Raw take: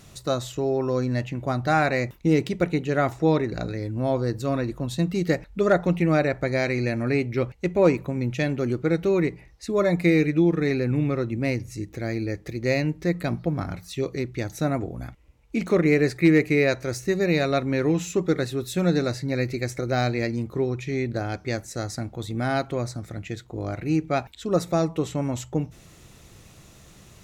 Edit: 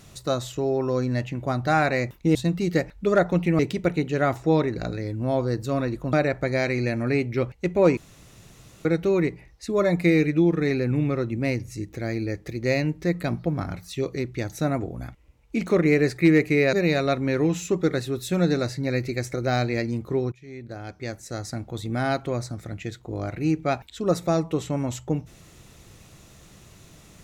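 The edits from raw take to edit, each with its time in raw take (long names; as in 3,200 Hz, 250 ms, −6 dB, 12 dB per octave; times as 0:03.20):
0:04.89–0:06.13: move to 0:02.35
0:07.97–0:08.85: fill with room tone
0:16.73–0:17.18: remove
0:20.77–0:22.17: fade in, from −22.5 dB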